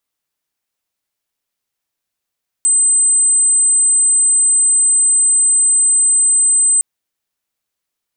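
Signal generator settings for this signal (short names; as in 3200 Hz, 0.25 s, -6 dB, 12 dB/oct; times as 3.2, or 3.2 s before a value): tone sine 8130 Hz -9 dBFS 4.16 s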